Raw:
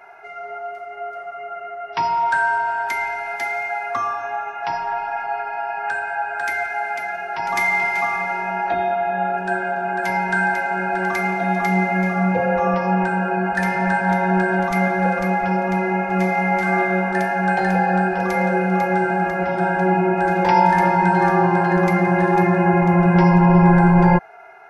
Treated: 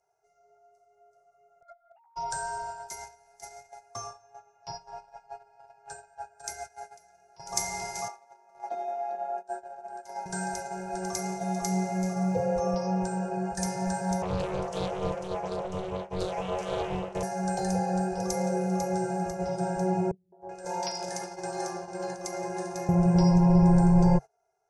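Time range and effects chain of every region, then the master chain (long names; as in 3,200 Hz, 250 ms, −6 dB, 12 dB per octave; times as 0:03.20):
0:01.61–0:02.16: three sine waves on the formant tracks + compressor whose output falls as the input rises −29 dBFS + double-tracking delay 15 ms −3 dB
0:08.08–0:10.26: Chebyshev high-pass with heavy ripple 210 Hz, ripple 6 dB + high-shelf EQ 4,200 Hz −5.5 dB + single-tap delay 407 ms −8.5 dB
0:14.22–0:17.23: high-pass filter 160 Hz 6 dB per octave + bass and treble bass −5 dB, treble −13 dB + highs frequency-modulated by the lows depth 0.82 ms
0:20.11–0:22.89: meter weighting curve A + hard clipping −7 dBFS + three-band delay without the direct sound lows, mids, highs 210/380 ms, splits 220/930 Hz
whole clip: low-pass filter 9,500 Hz 24 dB per octave; noise gate −22 dBFS, range −20 dB; drawn EQ curve 140 Hz 0 dB, 280 Hz −20 dB, 430 Hz −4 dB, 1,900 Hz −24 dB, 3,400 Hz −14 dB, 5,900 Hz +10 dB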